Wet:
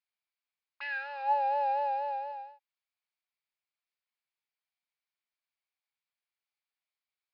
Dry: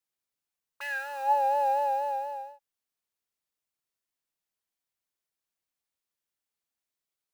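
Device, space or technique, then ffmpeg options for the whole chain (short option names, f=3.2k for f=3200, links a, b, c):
musical greeting card: -filter_complex "[0:a]aresample=11025,aresample=44100,highpass=f=650:w=0.5412,highpass=f=650:w=1.3066,equalizer=f=2.3k:t=o:w=0.25:g=8,asettb=1/sr,asplit=3[a][b][c];[a]atrim=end=0.964[d];[b]atrim=start=0.96:end=2.32,asetpts=PTS-STARTPTS,afade=t=in:d=0.004:c=qsin,afade=t=out:st=1.356:d=0.004:c=qsin,equalizer=f=570:t=o:w=0.27:g=5[e];[c]atrim=start=2.316[f];[d][e]acrossfade=d=0.004:c1=hsin:c2=qsin[g];[g][f]acrossfade=d=0.004:c1=qsin:c2=hsin,volume=-3dB"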